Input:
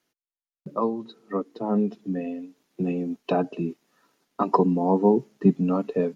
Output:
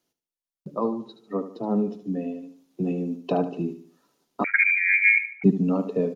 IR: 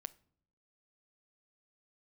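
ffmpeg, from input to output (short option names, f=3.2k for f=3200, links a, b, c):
-filter_complex "[0:a]equalizer=f=1.8k:w=1.1:g=-8,aecho=1:1:74|148|222|296:0.266|0.101|0.0384|0.0146,asettb=1/sr,asplit=3[a][b][c];[a]atrim=end=4.444[d];[b]atrim=start=4.44:end=5.44,asetpts=PTS-STARTPTS,afade=t=in:d=0.004:c=qsin,afade=t=out:st=0.996:d=0.004:c=qsin,lowpass=f=2.2k:t=q:w=0.5098,lowpass=f=2.2k:t=q:w=0.6013,lowpass=f=2.2k:t=q:w=0.9,lowpass=f=2.2k:t=q:w=2.563,afreqshift=-2600[e];[c]atrim=start=5.436[f];[d][e]acrossfade=d=0.004:c1=hsin:c2=qsin[g];[g][f]acrossfade=d=0.004:c1=qsin:c2=hsin"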